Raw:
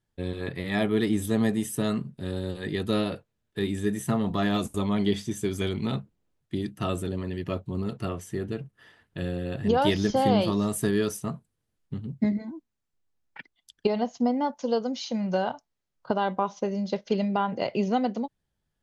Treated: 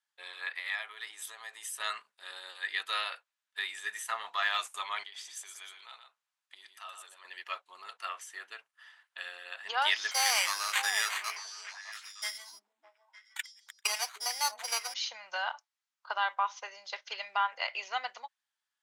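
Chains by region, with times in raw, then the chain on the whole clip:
0:00.58–0:01.80: high-pass filter 320 Hz + downward compressor 8 to 1, threshold −32 dBFS
0:05.03–0:07.25: downward compressor 10 to 1, threshold −33 dBFS + high-pass filter 330 Hz 6 dB per octave + single-tap delay 120 ms −7 dB
0:10.11–0:14.94: sample-rate reduction 5,300 Hz + spectral tilt +2.5 dB per octave + echo through a band-pass that steps 304 ms, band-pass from 270 Hz, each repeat 1.4 octaves, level −4 dB
whole clip: low-pass filter 10,000 Hz 12 dB per octave; dynamic equaliser 2,000 Hz, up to +6 dB, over −45 dBFS, Q 1; high-pass filter 970 Hz 24 dB per octave

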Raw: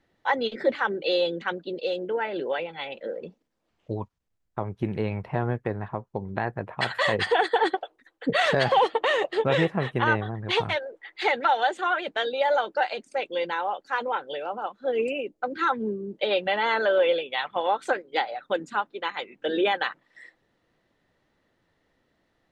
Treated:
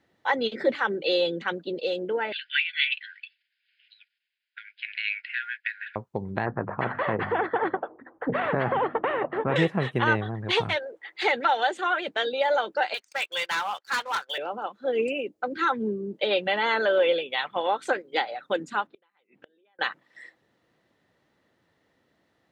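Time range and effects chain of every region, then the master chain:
0:02.32–0:05.96: linear-phase brick-wall band-pass 1,400–5,200 Hz + parametric band 2,600 Hz +13.5 dB 1.5 octaves
0:06.46–0:09.56: low-pass filter 1,200 Hz 24 dB per octave + mains-hum notches 50/100/150/200/250 Hz + every bin compressed towards the loudest bin 2 to 1
0:12.94–0:14.38: Chebyshev band-pass filter 1,200–5,700 Hz + leveller curve on the samples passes 2 + hard clipping −23 dBFS
0:18.87–0:19.79: low-pass filter 4,000 Hz + downward compressor, threshold −40 dBFS + gate with flip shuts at −37 dBFS, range −27 dB
whole clip: high-pass filter 86 Hz; dynamic equaliser 810 Hz, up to −3 dB, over −34 dBFS, Q 0.89; level +1.5 dB

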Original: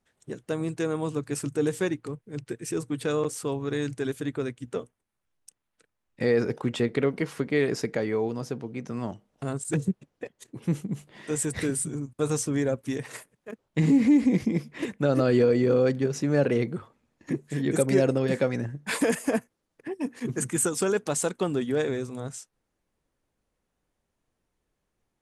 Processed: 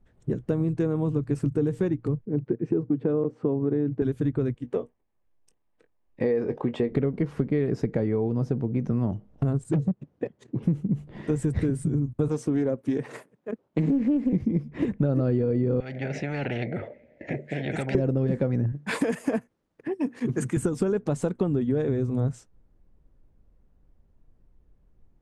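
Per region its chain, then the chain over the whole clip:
0:02.25–0:04.02: band-pass filter 250–2,600 Hz + tilt shelving filter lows +7 dB, about 770 Hz
0:04.54–0:06.92: bass and treble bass −15 dB, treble −6 dB + notch filter 1,400 Hz, Q 6.1 + double-tracking delay 21 ms −12.5 dB
0:09.69–0:10.63: hard clipping −24 dBFS + band-pass filter 120–7,400 Hz
0:12.28–0:14.33: high-pass filter 260 Hz + highs frequency-modulated by the lows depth 0.22 ms
0:15.80–0:17.95: pair of resonant band-passes 1,100 Hz, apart 1.8 octaves + every bin compressed towards the loudest bin 10 to 1
0:18.72–0:20.57: high-pass filter 230 Hz 6 dB per octave + tilt shelving filter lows −4 dB, about 1,100 Hz
whole clip: spectral tilt −4.5 dB per octave; downward compressor 6 to 1, threshold −24 dBFS; level +2.5 dB

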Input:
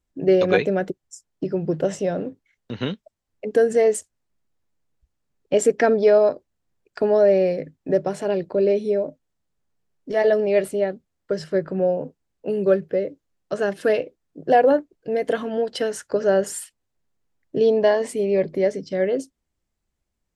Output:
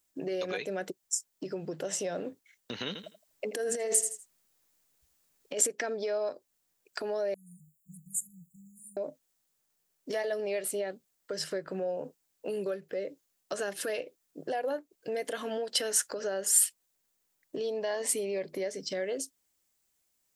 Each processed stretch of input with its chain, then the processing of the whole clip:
0:02.87–0:05.61: repeating echo 81 ms, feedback 22%, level −13 dB + compressor whose output falls as the input rises −22 dBFS
0:07.34–0:08.97: linear-phase brick-wall band-stop 180–6,700 Hz + high-shelf EQ 10,000 Hz +4.5 dB + phaser with its sweep stopped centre 590 Hz, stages 8
whole clip: downward compressor 10 to 1, threshold −26 dBFS; brickwall limiter −22.5 dBFS; RIAA equalisation recording

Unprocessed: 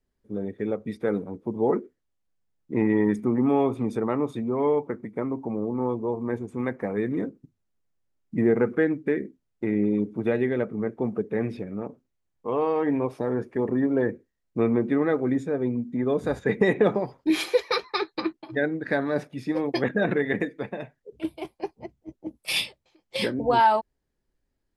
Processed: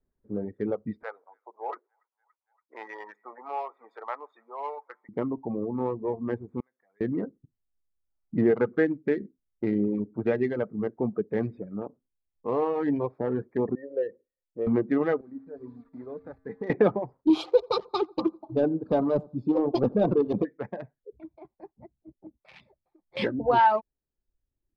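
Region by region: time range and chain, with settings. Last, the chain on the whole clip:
0:01.03–0:05.09: high-pass filter 710 Hz 24 dB per octave + delay with a high-pass on its return 285 ms, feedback 60%, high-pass 1,900 Hz, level −15 dB
0:06.60–0:07.01: resonant band-pass 7,500 Hz, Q 1.4 + downward compressor 2.5 to 1, threshold −59 dBFS
0:13.75–0:14.67: mu-law and A-law mismatch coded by mu + formant resonators in series e + parametric band 400 Hz +4.5 dB 0.87 octaves
0:15.21–0:16.70: hold until the input has moved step −35.5 dBFS + low-shelf EQ 89 Hz −9 dB + tuned comb filter 90 Hz, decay 1.5 s, harmonics odd, mix 80%
0:17.27–0:20.45: leveller curve on the samples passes 1 + Butterworth band-reject 1,900 Hz, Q 0.89 + repeating echo 86 ms, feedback 25%, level −12.5 dB
0:21.20–0:23.17: notch filter 480 Hz, Q 5.2 + downward compressor 2 to 1, threshold −49 dBFS
whole clip: adaptive Wiener filter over 15 samples; low-pass filter 3,000 Hz 12 dB per octave; reverb reduction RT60 1 s

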